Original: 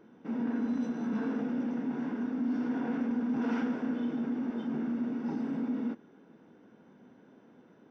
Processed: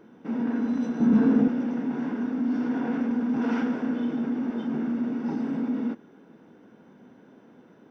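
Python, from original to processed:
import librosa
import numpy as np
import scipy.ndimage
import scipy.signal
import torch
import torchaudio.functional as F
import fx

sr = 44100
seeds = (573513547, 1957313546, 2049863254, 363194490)

y = fx.low_shelf(x, sr, hz=380.0, db=11.5, at=(1.0, 1.48))
y = F.gain(torch.from_numpy(y), 5.0).numpy()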